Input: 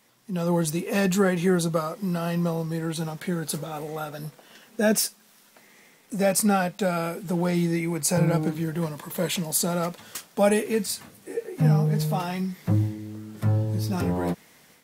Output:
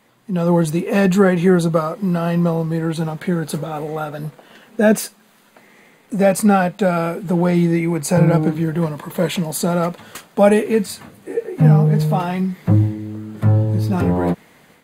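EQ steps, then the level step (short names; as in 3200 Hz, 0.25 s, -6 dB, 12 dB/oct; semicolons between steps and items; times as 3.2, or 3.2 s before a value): high shelf 3300 Hz -10.5 dB; notch 5500 Hz, Q 5.7; +8.5 dB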